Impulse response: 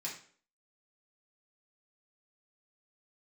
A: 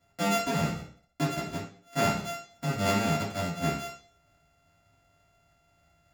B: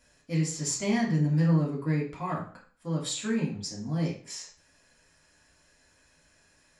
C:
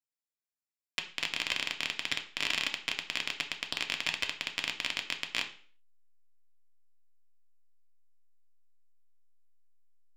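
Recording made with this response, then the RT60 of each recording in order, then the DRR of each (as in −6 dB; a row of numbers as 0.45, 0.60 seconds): B; 0.50, 0.50, 0.50 seconds; −11.0, −5.0, 4.5 decibels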